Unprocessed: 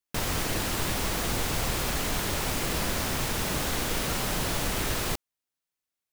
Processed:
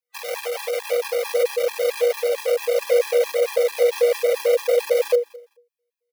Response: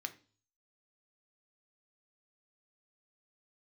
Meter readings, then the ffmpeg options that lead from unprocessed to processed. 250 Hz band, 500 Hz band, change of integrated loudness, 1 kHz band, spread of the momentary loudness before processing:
under -25 dB, +18.0 dB, +7.0 dB, -2.0 dB, 1 LU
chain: -filter_complex "[0:a]superequalizer=9b=0.631:11b=2.24:15b=0.447,asplit=2[a][b];[b]aecho=0:1:206|412:0.0841|0.0168[c];[a][c]amix=inputs=2:normalize=0,aeval=exprs='max(val(0),0)':c=same,asubboost=boost=5:cutoff=140,afreqshift=480,afftfilt=real='re*gt(sin(2*PI*4.5*pts/sr)*(1-2*mod(floor(b*sr/1024/390),2)),0)':imag='im*gt(sin(2*PI*4.5*pts/sr)*(1-2*mod(floor(b*sr/1024/390),2)),0)':win_size=1024:overlap=0.75,volume=4.5dB"

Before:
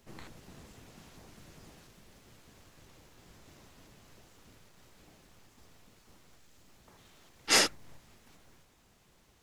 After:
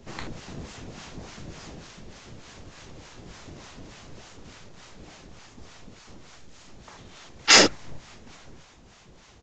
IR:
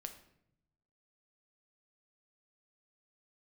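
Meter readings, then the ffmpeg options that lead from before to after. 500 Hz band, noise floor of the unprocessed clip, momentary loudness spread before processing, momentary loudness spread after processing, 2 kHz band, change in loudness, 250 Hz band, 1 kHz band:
+11.0 dB, -65 dBFS, 4 LU, 12 LU, +10.0 dB, +9.5 dB, +12.5 dB, +10.0 dB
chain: -filter_complex "[0:a]aresample=16000,aresample=44100,acrossover=split=660[a][b];[a]aeval=exprs='val(0)*(1-0.7/2+0.7/2*cos(2*PI*3.4*n/s))':c=same[c];[b]aeval=exprs='val(0)*(1-0.7/2-0.7/2*cos(2*PI*3.4*n/s))':c=same[d];[c][d]amix=inputs=2:normalize=0,alimiter=level_in=17dB:limit=-1dB:release=50:level=0:latency=1,volume=-1dB"

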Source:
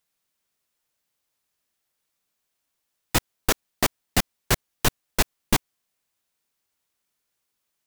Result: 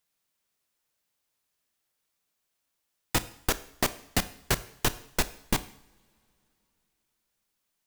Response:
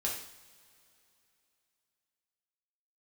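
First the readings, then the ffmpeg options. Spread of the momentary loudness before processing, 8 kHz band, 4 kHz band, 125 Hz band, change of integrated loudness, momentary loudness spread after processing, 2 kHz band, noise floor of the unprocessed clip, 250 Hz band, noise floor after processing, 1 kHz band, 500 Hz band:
3 LU, -4.5 dB, -4.5 dB, -5.0 dB, -4.5 dB, 3 LU, -4.5 dB, -79 dBFS, -4.5 dB, -80 dBFS, -4.5 dB, -4.5 dB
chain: -filter_complex "[0:a]acompressor=threshold=-20dB:ratio=4,asplit=2[a][b];[1:a]atrim=start_sample=2205,adelay=31[c];[b][c]afir=irnorm=-1:irlink=0,volume=-17.5dB[d];[a][d]amix=inputs=2:normalize=0,volume=-1.5dB"

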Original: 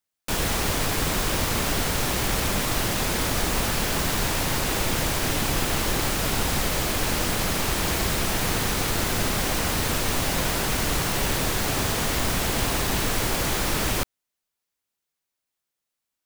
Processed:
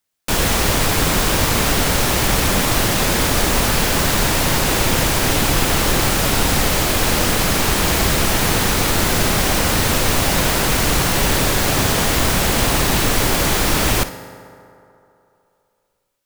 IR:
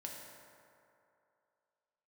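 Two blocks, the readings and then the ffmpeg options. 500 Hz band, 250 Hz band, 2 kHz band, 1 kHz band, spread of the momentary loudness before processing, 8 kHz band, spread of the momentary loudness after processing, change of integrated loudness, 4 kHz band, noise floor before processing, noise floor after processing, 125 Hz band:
+8.0 dB, +8.0 dB, +8.0 dB, +8.0 dB, 0 LU, +8.0 dB, 0 LU, +8.0 dB, +7.5 dB, -84 dBFS, -68 dBFS, +8.0 dB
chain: -filter_complex "[0:a]asplit=2[a][b];[1:a]atrim=start_sample=2205,asetrate=41013,aresample=44100,adelay=56[c];[b][c]afir=irnorm=-1:irlink=0,volume=-9dB[d];[a][d]amix=inputs=2:normalize=0,volume=7.5dB"

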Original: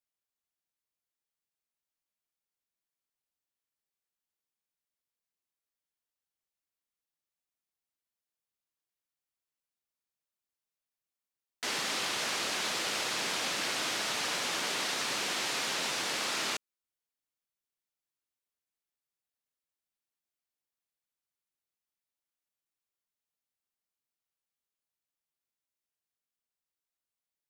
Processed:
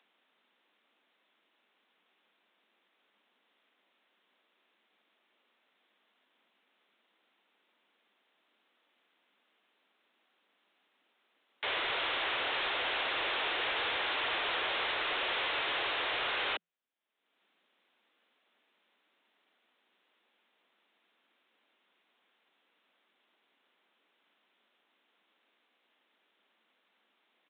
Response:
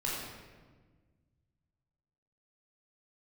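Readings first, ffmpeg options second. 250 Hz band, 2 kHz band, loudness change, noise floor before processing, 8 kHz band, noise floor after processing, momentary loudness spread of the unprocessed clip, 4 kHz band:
-5.5 dB, +2.0 dB, -1.0 dB, under -85 dBFS, under -40 dB, -76 dBFS, 1 LU, -1.0 dB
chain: -af "afreqshift=170,acompressor=mode=upward:threshold=-54dB:ratio=2.5,aresample=8000,asoftclip=type=tanh:threshold=-32.5dB,aresample=44100,equalizer=f=180:w=6.6:g=-10.5,volume=4.5dB"

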